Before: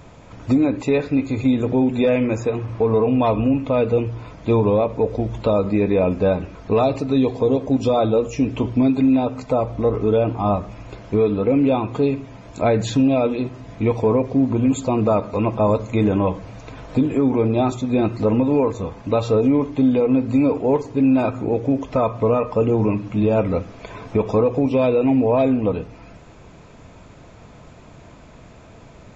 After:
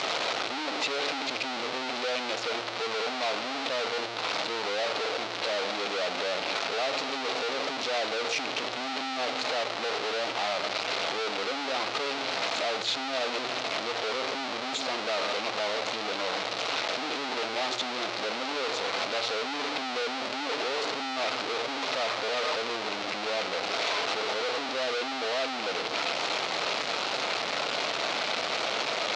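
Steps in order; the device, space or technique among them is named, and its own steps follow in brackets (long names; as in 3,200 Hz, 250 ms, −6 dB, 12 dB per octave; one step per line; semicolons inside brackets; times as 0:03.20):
0:05.15–0:05.70: hum removal 49.09 Hz, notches 10
home computer beeper (sign of each sample alone; loudspeaker in its box 660–5,200 Hz, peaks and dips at 1,000 Hz −5 dB, 1,700 Hz −5 dB, 4,100 Hz +4 dB)
level −4.5 dB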